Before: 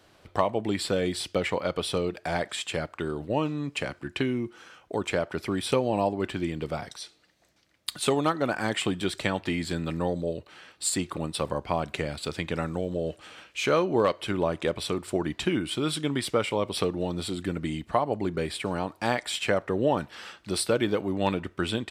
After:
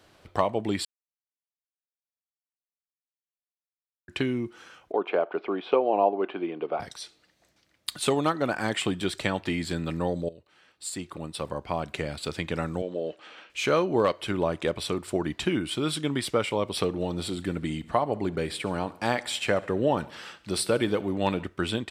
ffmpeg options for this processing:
-filter_complex "[0:a]asettb=1/sr,asplit=3[a][b][c];[a]atrim=end=4.924[d];[b]atrim=start=4.92:end=6.8,asetpts=PTS-STARTPTS,afade=t=in:d=0.004:c=qsin,afade=t=out:st=1.876:d=0.004:c=qsin,highpass=f=240:w=0.5412,highpass=f=240:w=1.3066,equalizer=f=240:t=q:w=4:g=-6,equalizer=f=420:t=q:w=4:g=5,equalizer=f=730:t=q:w=4:g=7,equalizer=f=1.1k:t=q:w=4:g=3,equalizer=f=1.9k:t=q:w=4:g=-9,lowpass=f=2.8k:w=0.5412,lowpass=f=2.8k:w=1.3066[e];[c]atrim=start=6.796[f];[d][e]acrossfade=d=0.004:c1=hsin:c2=qsin[g];[g][f]acrossfade=d=0.004:c1=qsin:c2=hsin,asettb=1/sr,asplit=3[h][i][j];[h]atrim=end=12.824[k];[i]atrim=start=12.82:end=13.5,asetpts=PTS-STARTPTS,afade=t=in:d=0.004:c=qsin,afade=t=out:st=0.676:d=0.004:c=qsin,highpass=280,lowpass=4.4k[l];[j]atrim=start=13.496[m];[k][l]acrossfade=d=0.004:c1=hsin:c2=qsin[n];[n][m]acrossfade=d=0.004:c1=qsin:c2=hsin,asettb=1/sr,asplit=3[o][p][q];[o]atrim=end=16.824[r];[p]atrim=start=16.82:end=21.47,asetpts=PTS-STARTPTS,afade=t=in:d=0.004:c=qsin,afade=t=out:st=4.646:d=0.004:c=qsin,aecho=1:1:69|138|207|276|345:0.0944|0.0557|0.0329|0.0194|0.0114,atrim=end_sample=205065[s];[q]atrim=start=21.466[t];[r][s]acrossfade=d=0.004:c1=hsin:c2=qsin[u];[u][t]acrossfade=d=0.004:c1=qsin:c2=hsin,asplit=4[v][w][x][y];[v]atrim=end=0.85,asetpts=PTS-STARTPTS,afade=t=out:st=0.846:d=0.004:c=hsin[z];[w]atrim=start=0.85:end=4.08,asetpts=PTS-STARTPTS,volume=0[aa];[x]atrim=start=4.08:end=10.29,asetpts=PTS-STARTPTS,afade=t=in:d=0.004:c=hsin,afade=t=out:st=6.206:d=0.004:c=hsin:silence=0.158489[ab];[y]atrim=start=10.29,asetpts=PTS-STARTPTS,afade=t=in:d=1.99:silence=0.158489[ac];[z][aa][ab][ac]concat=n=4:v=0:a=1"

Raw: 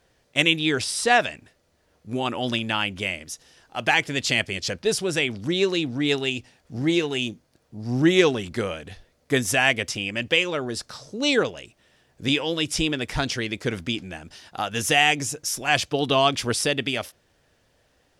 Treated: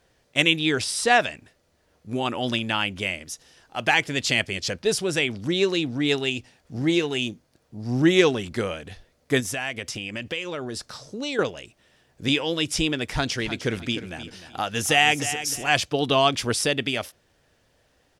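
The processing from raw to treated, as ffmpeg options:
-filter_complex "[0:a]asettb=1/sr,asplit=3[a][b][c];[a]atrim=end=9.404[d];[b]atrim=start=9.4:end=11.39,asetpts=PTS-STARTPTS,afade=t=in:d=0.004:c=qsin,afade=t=out:st=1.986:d=0.004:c=qsin,acompressor=threshold=-29dB:ratio=2.5:attack=3.2:release=140:knee=1:detection=peak[e];[c]atrim=start=11.386[f];[d][e]acrossfade=d=0.004:c1=hsin:c2=qsin[g];[g][f]acrossfade=d=0.004:c1=qsin:c2=hsin,asplit=3[h][i][j];[h]afade=t=out:st=13.37:d=0.02[k];[i]aecho=1:1:304|608|912:0.251|0.0628|0.0157,afade=t=in:st=13.37:d=0.02,afade=t=out:st=15.72:d=0.02[l];[j]afade=t=in:st=15.72:d=0.02[m];[k][l][m]amix=inputs=3:normalize=0"

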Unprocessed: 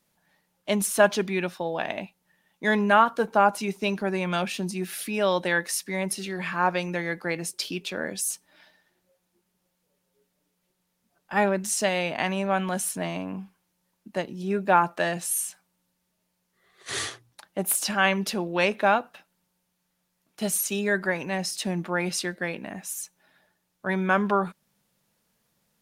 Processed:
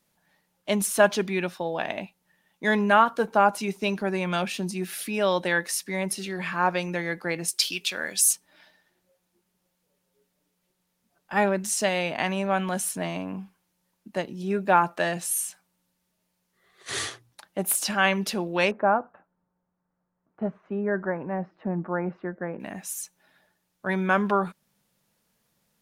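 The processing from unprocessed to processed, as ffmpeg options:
-filter_complex "[0:a]asettb=1/sr,asplit=3[a][b][c];[a]atrim=end=7.484[d];[b]atrim=start=7.48:end=8.33,asetpts=PTS-STARTPTS,afade=t=in:d=0.004:c=qsin,afade=t=out:st=0.846:d=0.004:c=qsin,tiltshelf=f=1.1k:g=-8.5[e];[c]atrim=start=8.326[f];[d][e]acrossfade=d=0.004:c1=hsin:c2=qsin[g];[g][f]acrossfade=d=0.004:c1=qsin:c2=hsin,asettb=1/sr,asplit=3[h][i][j];[h]atrim=end=18.714[k];[i]atrim=start=18.71:end=22.6,asetpts=PTS-STARTPTS,afade=t=in:d=0.004:c=qsin,afade=t=out:st=3.886:d=0.004:c=qsin,lowpass=f=1.4k:w=0.5412,lowpass=f=1.4k:w=1.3066[l];[j]atrim=start=22.596[m];[k][l]acrossfade=d=0.004:c1=hsin:c2=qsin[n];[n][m]acrossfade=d=0.004:c1=qsin:c2=hsin"

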